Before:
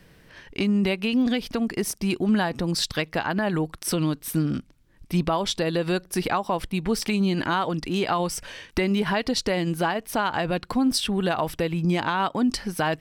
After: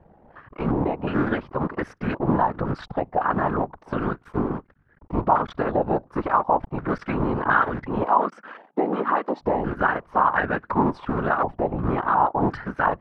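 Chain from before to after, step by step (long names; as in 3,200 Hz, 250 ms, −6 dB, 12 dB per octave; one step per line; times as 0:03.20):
sub-harmonics by changed cycles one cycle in 3, muted
random phases in short frames
0:08.06–0:09.41: Butterworth high-pass 200 Hz 36 dB per octave
low-pass on a step sequencer 2.8 Hz 800–1,600 Hz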